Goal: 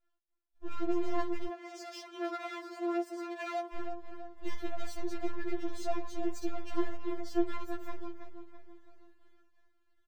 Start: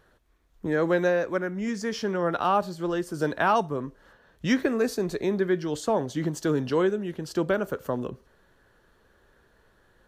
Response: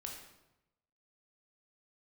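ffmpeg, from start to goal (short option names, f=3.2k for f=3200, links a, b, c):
-filter_complex "[0:a]alimiter=limit=-17dB:level=0:latency=1,asplit=2[a][b];[b]adelay=329,lowpass=f=1.3k:p=1,volume=-8.5dB,asplit=2[c][d];[d]adelay=329,lowpass=f=1.3k:p=1,volume=0.52,asplit=2[e][f];[f]adelay=329,lowpass=f=1.3k:p=1,volume=0.52,asplit=2[g][h];[h]adelay=329,lowpass=f=1.3k:p=1,volume=0.52,asplit=2[i][j];[j]adelay=329,lowpass=f=1.3k:p=1,volume=0.52,asplit=2[k][l];[l]adelay=329,lowpass=f=1.3k:p=1,volume=0.52[m];[a][c][e][g][i][k][m]amix=inputs=7:normalize=0,agate=range=-33dB:threshold=-52dB:ratio=3:detection=peak,aeval=exprs='max(val(0),0)':c=same,equalizer=f=11k:t=o:w=0.43:g=-11,asoftclip=type=tanh:threshold=-19dB,asettb=1/sr,asplit=3[n][o][p];[n]atrim=end=1.474[q];[o]atrim=start=1.47:end=3.75,asetpts=PTS-STARTPTS,afade=t=in:d=0.004:c=qsin,afade=t=out:st=2.276:d=0.004:c=qsin,highpass=390[r];[p]atrim=start=3.746[s];[q][r]acrossfade=d=0.004:c1=hsin:c2=qsin[t];[t][s]acrossfade=d=0.004:c1=qsin:c2=hsin,afftfilt=real='re*4*eq(mod(b,16),0)':imag='im*4*eq(mod(b,16),0)':win_size=2048:overlap=0.75,volume=-2.5dB"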